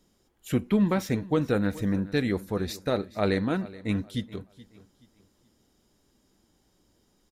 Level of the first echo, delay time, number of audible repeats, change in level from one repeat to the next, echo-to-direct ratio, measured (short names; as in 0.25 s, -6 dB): -19.0 dB, 0.426 s, 2, -10.0 dB, -18.5 dB